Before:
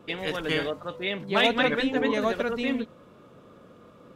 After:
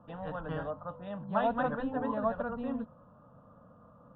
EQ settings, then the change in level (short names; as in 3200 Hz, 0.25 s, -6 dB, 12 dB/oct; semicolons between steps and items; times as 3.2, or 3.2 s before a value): LPF 1700 Hz 12 dB/oct; air absorption 360 m; fixed phaser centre 910 Hz, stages 4; 0.0 dB